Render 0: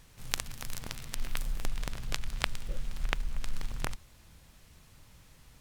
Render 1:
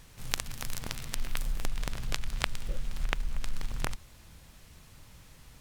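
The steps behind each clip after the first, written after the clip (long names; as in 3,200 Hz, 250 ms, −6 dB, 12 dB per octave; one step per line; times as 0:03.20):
downward compressor 1.5 to 1, threshold −32 dBFS, peak gain reduction 4 dB
level +3.5 dB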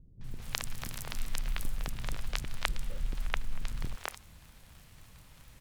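surface crackle 51 per second −39 dBFS
three-band delay without the direct sound lows, mids, highs 210/240 ms, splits 370/5,900 Hz
level −1.5 dB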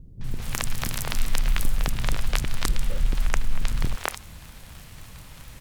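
sine wavefolder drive 9 dB, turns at −6 dBFS
level −1.5 dB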